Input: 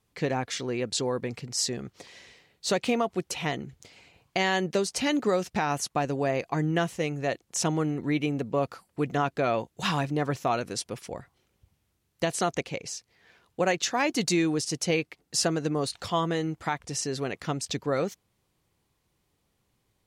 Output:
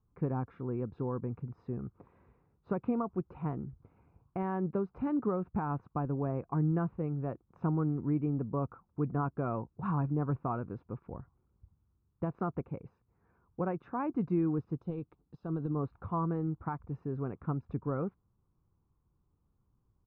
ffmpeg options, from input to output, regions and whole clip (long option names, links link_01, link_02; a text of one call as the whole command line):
ffmpeg -i in.wav -filter_complex "[0:a]asettb=1/sr,asplit=3[link_01][link_02][link_03];[link_01]atrim=end=14.794[link_04];[link_02]atrim=start=14.79:end=15.76,asetpts=PTS-STARTPTS,afade=type=in:duration=0.004:curve=qsin,afade=type=out:start_time=0.966:duration=0.004:curve=qsin,highshelf=frequency=2800:width_type=q:width=3:gain=8.5,acompressor=threshold=-24dB:ratio=16:attack=3.2:release=140:knee=1:detection=peak[link_05];[link_03]atrim=start=15.756[link_06];[link_04][link_05]acrossfade=duration=0.004:curve1=hsin:curve2=qsin[link_07];[link_07][link_06]acrossfade=duration=0.004:curve1=qsin:curve2=hsin,lowpass=frequency=1200:width=0.5412,lowpass=frequency=1200:width=1.3066,lowshelf=frequency=120:gain=9.5,aecho=1:1:0.8:0.51,volume=-7dB" out.wav